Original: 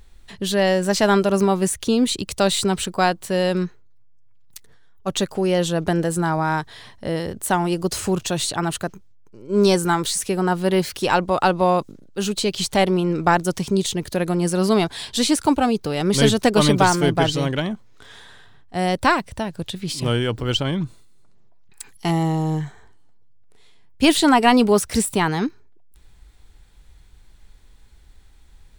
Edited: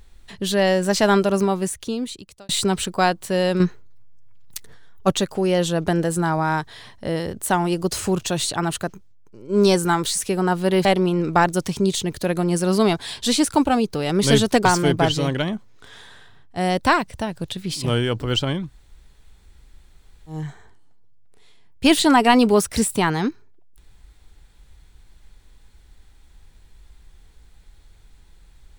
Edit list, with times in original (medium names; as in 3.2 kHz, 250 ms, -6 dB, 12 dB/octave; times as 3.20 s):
1.19–2.49 s: fade out
3.60–5.12 s: gain +7 dB
10.85–12.76 s: delete
16.56–16.83 s: delete
20.81–22.56 s: room tone, crossfade 0.24 s